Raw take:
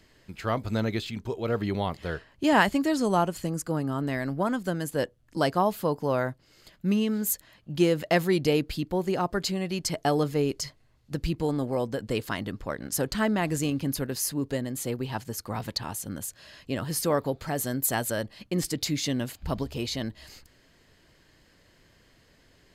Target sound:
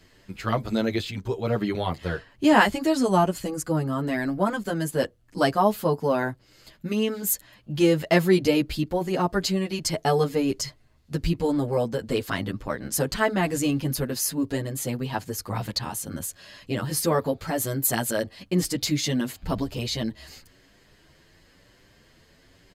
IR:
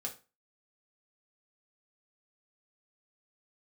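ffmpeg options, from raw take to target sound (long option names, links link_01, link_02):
-filter_complex "[0:a]asplit=2[link_01][link_02];[link_02]adelay=8.7,afreqshift=0.98[link_03];[link_01][link_03]amix=inputs=2:normalize=1,volume=6dB"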